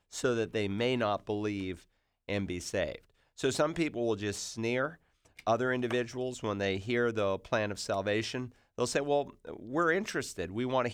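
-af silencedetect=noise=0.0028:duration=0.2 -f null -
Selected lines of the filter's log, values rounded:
silence_start: 1.83
silence_end: 2.28 | silence_duration: 0.45
silence_start: 2.98
silence_end: 3.38 | silence_duration: 0.39
silence_start: 4.95
silence_end: 5.26 | silence_duration: 0.30
silence_start: 8.52
silence_end: 8.78 | silence_duration: 0.26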